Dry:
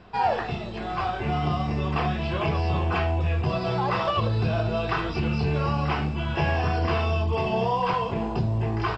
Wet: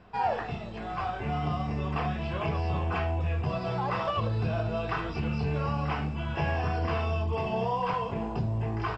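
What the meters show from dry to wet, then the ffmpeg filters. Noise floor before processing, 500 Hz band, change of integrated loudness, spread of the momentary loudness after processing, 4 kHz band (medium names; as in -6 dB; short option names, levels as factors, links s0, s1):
-32 dBFS, -5.0 dB, -5.0 dB, 3 LU, -7.5 dB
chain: -af "equalizer=f=4100:t=o:w=0.85:g=-5,bandreject=f=360:w=12,volume=0.596"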